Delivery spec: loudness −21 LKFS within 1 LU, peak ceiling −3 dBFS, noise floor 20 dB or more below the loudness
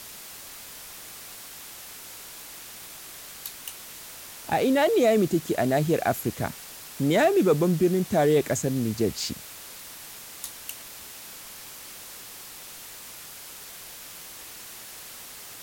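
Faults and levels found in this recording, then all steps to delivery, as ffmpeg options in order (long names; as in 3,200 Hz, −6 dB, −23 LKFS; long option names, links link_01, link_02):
background noise floor −43 dBFS; target noise floor −45 dBFS; integrated loudness −24.5 LKFS; sample peak −11.0 dBFS; target loudness −21.0 LKFS
→ -af "afftdn=noise_reduction=6:noise_floor=-43"
-af "volume=3.5dB"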